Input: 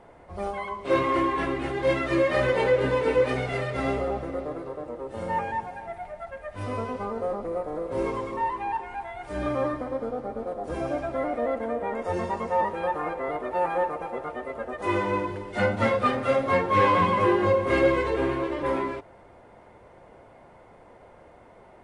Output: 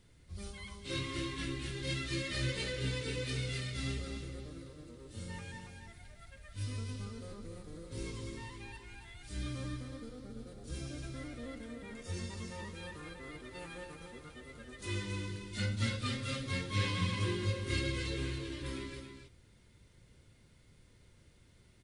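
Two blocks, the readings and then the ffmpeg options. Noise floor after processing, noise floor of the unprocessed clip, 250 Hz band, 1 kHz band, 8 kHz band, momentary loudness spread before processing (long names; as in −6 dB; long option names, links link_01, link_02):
−63 dBFS, −52 dBFS, −12.0 dB, −23.5 dB, can't be measured, 13 LU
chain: -filter_complex "[0:a]firequalizer=gain_entry='entry(120,0);entry(180,-6);entry(720,-29);entry(1400,-14);entry(3900,6)':delay=0.05:min_phase=1,asplit=2[link_01][link_02];[link_02]aecho=0:1:278:0.422[link_03];[link_01][link_03]amix=inputs=2:normalize=0,volume=-2.5dB"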